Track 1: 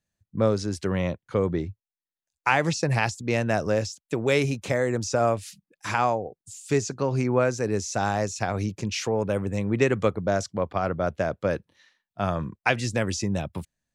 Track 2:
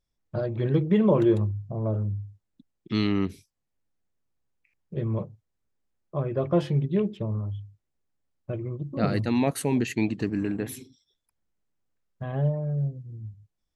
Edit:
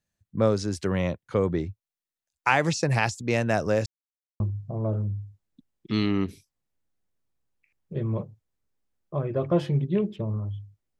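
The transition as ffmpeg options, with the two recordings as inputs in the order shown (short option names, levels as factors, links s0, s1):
-filter_complex "[0:a]apad=whole_dur=10.99,atrim=end=10.99,asplit=2[s0][s1];[s0]atrim=end=3.86,asetpts=PTS-STARTPTS,afade=t=out:st=3.856:d=0.004:c=hsin[s2];[s1]atrim=start=3.86:end=4.4,asetpts=PTS-STARTPTS,volume=0[s3];[1:a]atrim=start=1.41:end=8,asetpts=PTS-STARTPTS,afade=t=in:d=0.004:c=hsin[s4];[s2][s3][s4]concat=n=3:v=0:a=1"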